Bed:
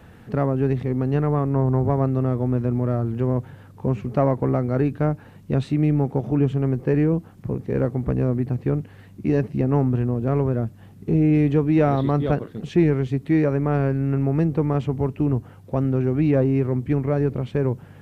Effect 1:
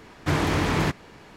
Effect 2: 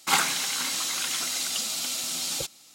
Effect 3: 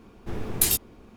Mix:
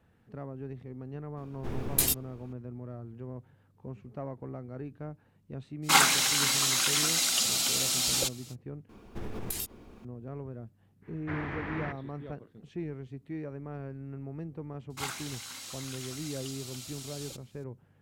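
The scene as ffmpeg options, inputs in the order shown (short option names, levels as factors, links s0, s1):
-filter_complex "[3:a]asplit=2[s0][s1];[2:a]asplit=2[s2][s3];[0:a]volume=0.106[s4];[s2]acontrast=69[s5];[s1]acompressor=threshold=0.0316:ratio=6:attack=3.2:release=140:knee=1:detection=peak[s6];[1:a]lowpass=f=1900:t=q:w=2.4[s7];[s4]asplit=2[s8][s9];[s8]atrim=end=8.894[s10];[s6]atrim=end=1.16,asetpts=PTS-STARTPTS,volume=0.841[s11];[s9]atrim=start=10.046[s12];[s0]atrim=end=1.16,asetpts=PTS-STARTPTS,volume=0.631,afade=t=in:d=0.004:c=hsin,afade=t=out:st=1.156:d=0.004:c=hsin,adelay=1370[s13];[s5]atrim=end=2.74,asetpts=PTS-STARTPTS,volume=0.596,afade=t=in:d=0.05,afade=t=out:st=2.69:d=0.05,adelay=5820[s14];[s7]atrim=end=1.36,asetpts=PTS-STARTPTS,volume=0.168,afade=t=in:d=0.05,afade=t=out:st=1.31:d=0.05,adelay=11010[s15];[s3]atrim=end=2.74,asetpts=PTS-STARTPTS,volume=0.188,afade=t=in:d=0.004:c=hsin,afade=t=out:st=2.736:d=0.004:c=hsin,adelay=14900[s16];[s10][s11]acrossfade=d=0.004:c1=hsin:c2=hsin[s17];[s17][s12]acrossfade=d=0.004:c1=hsin:c2=hsin[s18];[s18][s13][s14][s15][s16]amix=inputs=5:normalize=0"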